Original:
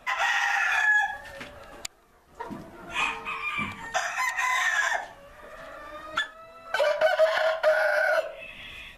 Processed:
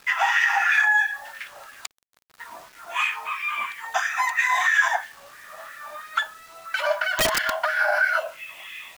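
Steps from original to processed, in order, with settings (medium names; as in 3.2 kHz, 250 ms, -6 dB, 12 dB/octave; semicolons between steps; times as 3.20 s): LFO high-pass sine 3 Hz 730–1900 Hz; 7.13–7.64 s: integer overflow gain 15 dB; bit crusher 8-bit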